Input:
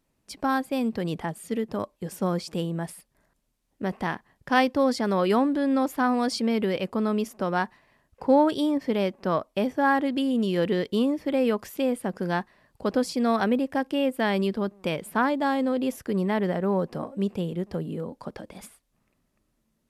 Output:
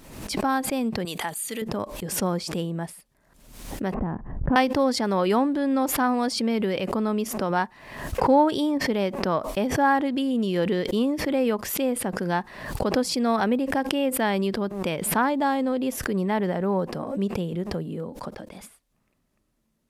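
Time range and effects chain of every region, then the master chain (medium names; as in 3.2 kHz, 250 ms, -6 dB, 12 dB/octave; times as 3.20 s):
1.05–1.62 s: Butterworth band-stop 5.4 kHz, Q 6.8 + tilt EQ +4 dB/octave
3.94–4.56 s: low-pass 1.4 kHz + tilt EQ -4.5 dB/octave + compression, threshold -23 dBFS
whole clip: dynamic bell 870 Hz, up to +4 dB, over -40 dBFS, Q 5.8; swell ahead of each attack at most 63 dB/s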